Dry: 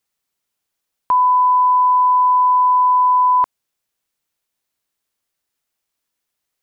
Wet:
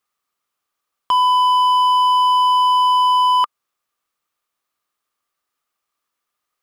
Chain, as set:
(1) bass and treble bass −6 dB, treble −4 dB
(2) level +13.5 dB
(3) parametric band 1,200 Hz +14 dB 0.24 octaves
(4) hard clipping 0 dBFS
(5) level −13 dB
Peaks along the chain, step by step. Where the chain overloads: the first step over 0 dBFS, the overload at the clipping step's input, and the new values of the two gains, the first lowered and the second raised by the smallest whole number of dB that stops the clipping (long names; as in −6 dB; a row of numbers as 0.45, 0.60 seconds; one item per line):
−9.5, +4.0, +9.0, 0.0, −13.0 dBFS
step 2, 9.0 dB
step 2 +4.5 dB, step 5 −4 dB